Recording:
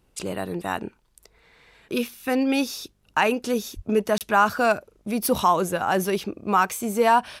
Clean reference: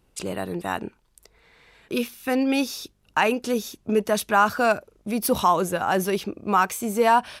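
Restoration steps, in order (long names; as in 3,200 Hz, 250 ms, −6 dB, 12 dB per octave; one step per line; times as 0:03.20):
0:03.75–0:03.87: high-pass filter 140 Hz 24 dB per octave
repair the gap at 0:04.18, 28 ms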